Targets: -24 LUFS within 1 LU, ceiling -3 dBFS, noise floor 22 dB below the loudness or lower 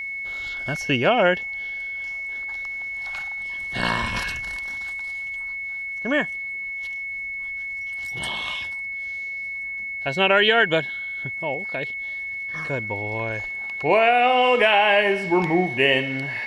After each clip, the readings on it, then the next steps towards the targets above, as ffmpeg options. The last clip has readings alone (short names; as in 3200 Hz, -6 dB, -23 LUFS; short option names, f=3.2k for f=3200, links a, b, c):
steady tone 2200 Hz; tone level -28 dBFS; loudness -23.0 LUFS; peak -4.0 dBFS; loudness target -24.0 LUFS
-> -af "bandreject=f=2.2k:w=30"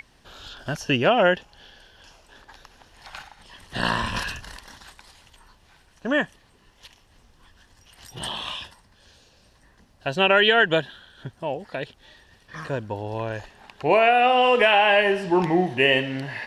steady tone none; loudness -21.5 LUFS; peak -5.0 dBFS; loudness target -24.0 LUFS
-> -af "volume=-2.5dB"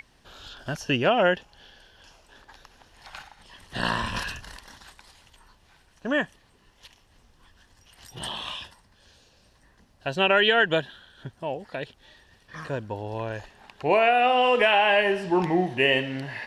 loudness -24.0 LUFS; peak -7.5 dBFS; noise floor -61 dBFS